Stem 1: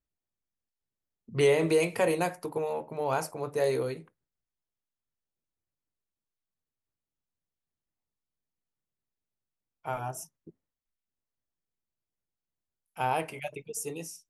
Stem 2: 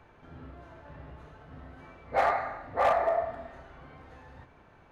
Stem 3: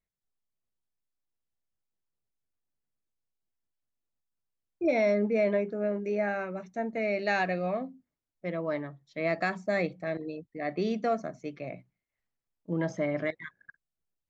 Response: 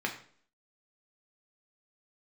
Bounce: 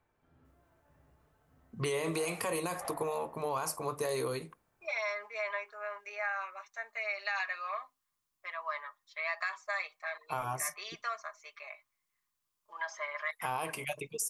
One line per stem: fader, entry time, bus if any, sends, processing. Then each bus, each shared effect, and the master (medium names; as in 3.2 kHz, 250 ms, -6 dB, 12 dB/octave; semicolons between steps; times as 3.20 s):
-1.0 dB, 0.45 s, bus A, no send, treble shelf 3.3 kHz +11.5 dB
-19.5 dB, 0.00 s, no bus, no send, none
0.0 dB, 0.00 s, bus A, no send, high-pass 980 Hz 24 dB/octave; comb 4.9 ms, depth 76%
bus A: 0.0 dB, peaking EQ 1.1 kHz +13.5 dB 0.27 oct; peak limiter -20 dBFS, peak gain reduction 9.5 dB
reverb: none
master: compression 2.5:1, threshold -32 dBFS, peak gain reduction 5.5 dB